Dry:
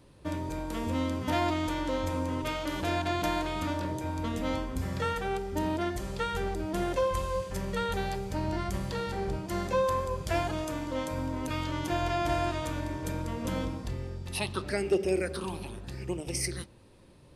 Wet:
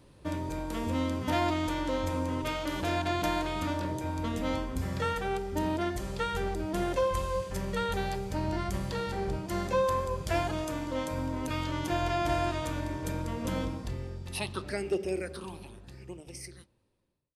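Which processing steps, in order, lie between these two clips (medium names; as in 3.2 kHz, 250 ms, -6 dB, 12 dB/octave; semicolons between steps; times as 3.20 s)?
fade out at the end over 3.75 s; 2.38–2.97 s: hard clipper -23 dBFS, distortion -38 dB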